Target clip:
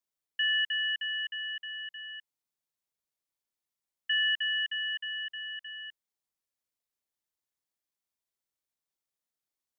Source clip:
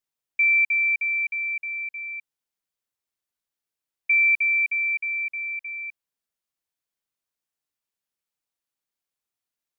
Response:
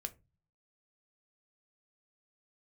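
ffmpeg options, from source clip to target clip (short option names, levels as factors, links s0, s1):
-af "equalizer=f=2100:t=o:w=0.24:g=-14.5,aeval=exprs='val(0)*sin(2*PI*590*n/s)':c=same"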